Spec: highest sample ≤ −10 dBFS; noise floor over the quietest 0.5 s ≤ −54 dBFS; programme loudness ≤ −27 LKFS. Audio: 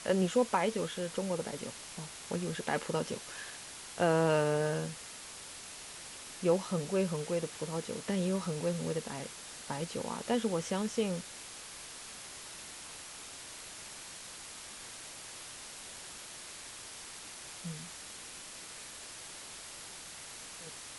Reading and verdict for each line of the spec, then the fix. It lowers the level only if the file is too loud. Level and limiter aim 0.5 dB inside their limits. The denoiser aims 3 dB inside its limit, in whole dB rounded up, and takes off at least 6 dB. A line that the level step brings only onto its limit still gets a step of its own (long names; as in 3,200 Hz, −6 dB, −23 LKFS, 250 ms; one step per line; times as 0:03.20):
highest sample −15.0 dBFS: in spec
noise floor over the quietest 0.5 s −47 dBFS: out of spec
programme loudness −36.5 LKFS: in spec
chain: broadband denoise 10 dB, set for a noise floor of −47 dBFS